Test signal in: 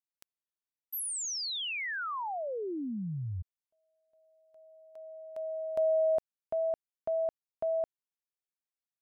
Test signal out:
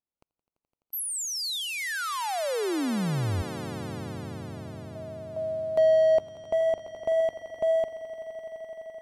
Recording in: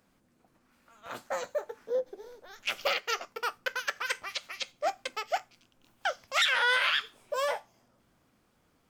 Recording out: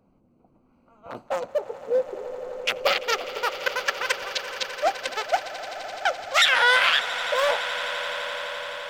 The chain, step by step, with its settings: local Wiener filter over 25 samples; echo with a slow build-up 85 ms, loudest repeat 8, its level -17.5 dB; trim +8 dB

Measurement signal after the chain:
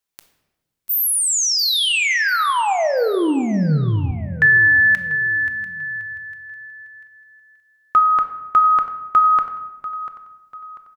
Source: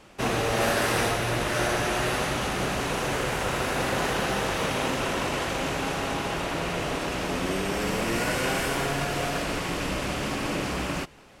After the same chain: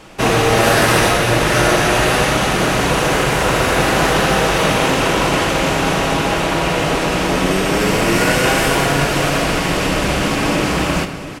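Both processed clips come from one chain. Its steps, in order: feedback delay 692 ms, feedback 38%, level -15 dB; simulated room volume 580 m³, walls mixed, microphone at 0.61 m; loudness maximiser +12 dB; trim -1 dB

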